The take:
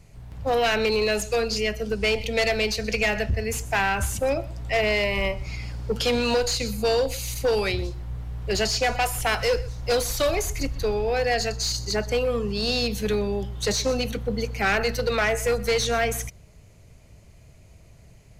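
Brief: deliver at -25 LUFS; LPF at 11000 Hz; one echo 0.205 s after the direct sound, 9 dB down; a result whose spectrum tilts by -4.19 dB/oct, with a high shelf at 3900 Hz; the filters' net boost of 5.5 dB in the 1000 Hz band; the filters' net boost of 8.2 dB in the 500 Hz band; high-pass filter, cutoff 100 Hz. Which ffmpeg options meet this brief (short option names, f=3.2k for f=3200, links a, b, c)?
-af "highpass=100,lowpass=11k,equalizer=f=500:t=o:g=8.5,equalizer=f=1k:t=o:g=4,highshelf=f=3.9k:g=-6,aecho=1:1:205:0.355,volume=-6dB"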